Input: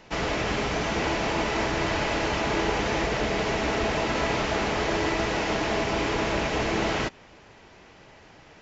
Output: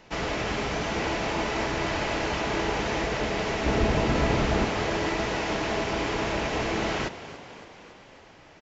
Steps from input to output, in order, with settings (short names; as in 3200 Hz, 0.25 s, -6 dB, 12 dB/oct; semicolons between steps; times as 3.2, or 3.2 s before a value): 3.66–4.65 low shelf 310 Hz +10.5 dB; frequency-shifting echo 0.282 s, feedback 62%, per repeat +39 Hz, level -14.5 dB; gain -2 dB